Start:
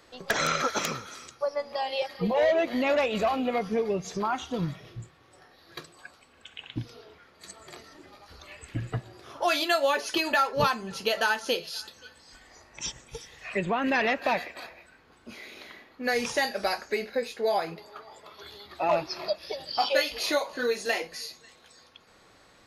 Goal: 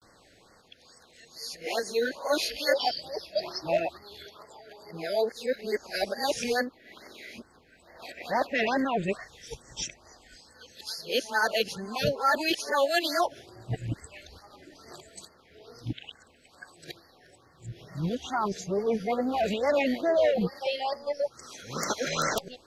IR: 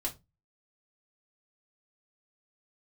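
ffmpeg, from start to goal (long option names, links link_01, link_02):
-af "areverse,afftfilt=real='re*(1-between(b*sr/1024,960*pow(3100/960,0.5+0.5*sin(2*PI*2.3*pts/sr))/1.41,960*pow(3100/960,0.5+0.5*sin(2*PI*2.3*pts/sr))*1.41))':imag='im*(1-between(b*sr/1024,960*pow(3100/960,0.5+0.5*sin(2*PI*2.3*pts/sr))/1.41,960*pow(3100/960,0.5+0.5*sin(2*PI*2.3*pts/sr))*1.41))':win_size=1024:overlap=0.75"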